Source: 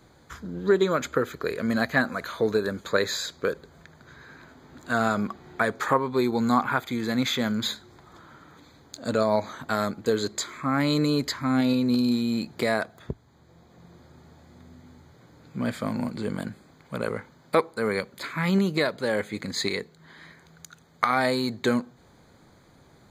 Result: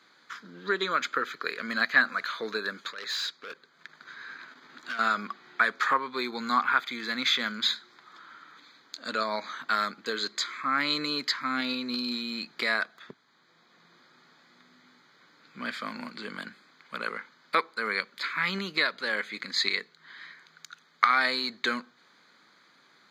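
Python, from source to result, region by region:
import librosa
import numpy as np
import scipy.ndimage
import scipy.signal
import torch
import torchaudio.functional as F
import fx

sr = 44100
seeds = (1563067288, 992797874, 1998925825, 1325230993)

y = fx.chain(x, sr, fx.transient(attack_db=-2, sustain_db=-9),
    fx.over_compress(threshold_db=-28.0, ratio=-0.5),
    fx.clip_hard(threshold_db=-31.5), at=(2.9, 4.99))
y = scipy.signal.sosfilt(scipy.signal.butter(4, 190.0, 'highpass', fs=sr, output='sos'), y)
y = fx.band_shelf(y, sr, hz=2500.0, db=14.5, octaves=2.7)
y = y * 10.0 ** (-11.0 / 20.0)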